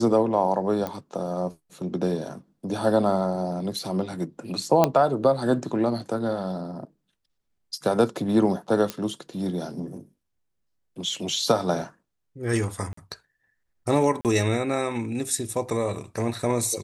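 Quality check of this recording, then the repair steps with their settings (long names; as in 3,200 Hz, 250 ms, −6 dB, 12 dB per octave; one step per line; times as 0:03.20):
0:00.87: click −17 dBFS
0:04.84: click −5 dBFS
0:08.90: click −12 dBFS
0:12.93–0:12.97: drop-out 44 ms
0:14.21–0:14.25: drop-out 38 ms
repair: click removal
repair the gap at 0:12.93, 44 ms
repair the gap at 0:14.21, 38 ms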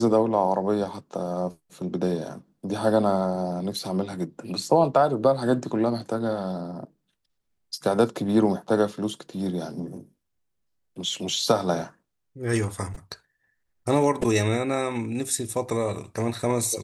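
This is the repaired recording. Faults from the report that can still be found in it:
none of them is left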